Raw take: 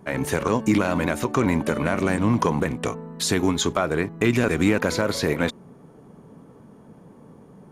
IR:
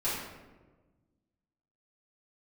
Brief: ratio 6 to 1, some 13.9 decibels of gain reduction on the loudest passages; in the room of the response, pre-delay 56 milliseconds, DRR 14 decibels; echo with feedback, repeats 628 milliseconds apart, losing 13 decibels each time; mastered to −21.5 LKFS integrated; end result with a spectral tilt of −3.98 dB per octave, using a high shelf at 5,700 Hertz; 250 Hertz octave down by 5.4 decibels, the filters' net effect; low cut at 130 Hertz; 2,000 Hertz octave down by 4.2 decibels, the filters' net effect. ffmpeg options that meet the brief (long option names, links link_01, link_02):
-filter_complex "[0:a]highpass=130,equalizer=frequency=250:width_type=o:gain=-6.5,equalizer=frequency=2000:width_type=o:gain=-6,highshelf=frequency=5700:gain=4.5,acompressor=threshold=-36dB:ratio=6,aecho=1:1:628|1256|1884:0.224|0.0493|0.0108,asplit=2[link_01][link_02];[1:a]atrim=start_sample=2205,adelay=56[link_03];[link_02][link_03]afir=irnorm=-1:irlink=0,volume=-22dB[link_04];[link_01][link_04]amix=inputs=2:normalize=0,volume=18dB"